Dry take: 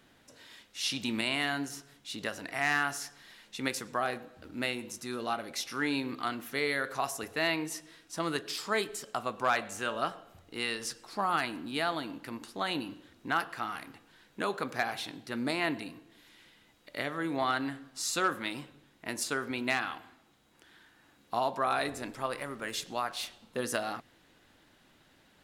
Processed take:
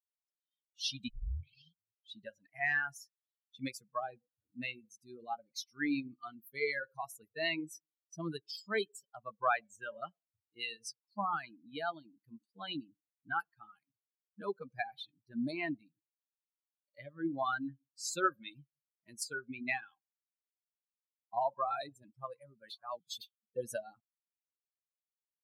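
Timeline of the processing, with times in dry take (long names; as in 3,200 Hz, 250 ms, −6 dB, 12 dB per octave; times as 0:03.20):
0:01.08: tape start 1.05 s
0:22.70–0:23.21: reverse
whole clip: spectral dynamics exaggerated over time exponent 3; high-pass filter 41 Hz; high-shelf EQ 9,600 Hz −8 dB; level +2.5 dB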